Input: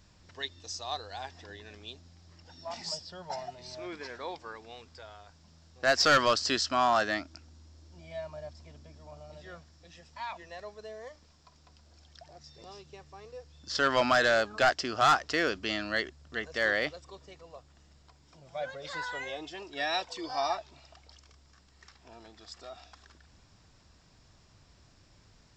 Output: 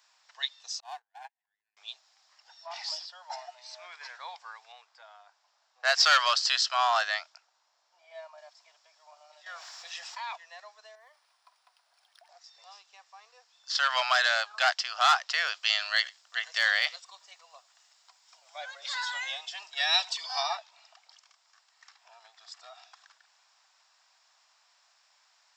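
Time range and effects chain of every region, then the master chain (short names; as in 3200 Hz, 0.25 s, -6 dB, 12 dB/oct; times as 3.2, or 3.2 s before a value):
0.8–1.77 gate -40 dBFS, range -34 dB + fixed phaser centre 840 Hz, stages 8 + running maximum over 5 samples
2.66–3.06 LPF 4900 Hz + fast leveller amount 50%
4.72–8.38 low shelf 440 Hz +5 dB + mismatched tape noise reduction decoder only
9.46–10.36 HPF 360 Hz 6 dB/oct + fast leveller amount 70%
10.95–12.29 high shelf 7100 Hz -9 dB + compressor 2.5:1, threshold -49 dBFS + decimation joined by straight lines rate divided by 3×
15.54–20.43 high shelf 3400 Hz +8 dB + echo 90 ms -24 dB
whole clip: steep high-pass 730 Hz 36 dB/oct; dynamic EQ 3600 Hz, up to +6 dB, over -45 dBFS, Q 1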